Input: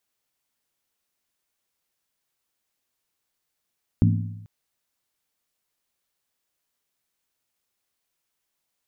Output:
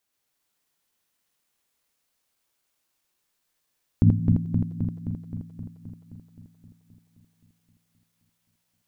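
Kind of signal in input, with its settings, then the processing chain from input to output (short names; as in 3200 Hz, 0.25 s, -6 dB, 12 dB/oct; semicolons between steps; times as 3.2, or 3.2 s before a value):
skin hit length 0.44 s, lowest mode 105 Hz, decay 0.95 s, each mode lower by 3 dB, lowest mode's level -14.5 dB
regenerating reverse delay 0.131 s, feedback 82%, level -3 dB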